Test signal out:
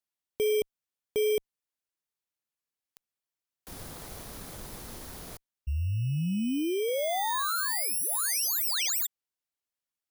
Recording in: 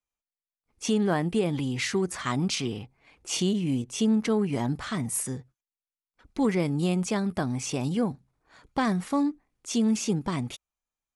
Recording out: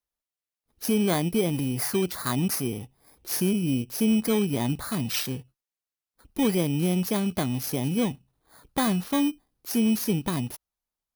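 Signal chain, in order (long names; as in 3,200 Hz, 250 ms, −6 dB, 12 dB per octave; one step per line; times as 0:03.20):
samples in bit-reversed order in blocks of 16 samples
harmonic generator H 5 −27 dB, 7 −34 dB, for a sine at −15 dBFS
level +1 dB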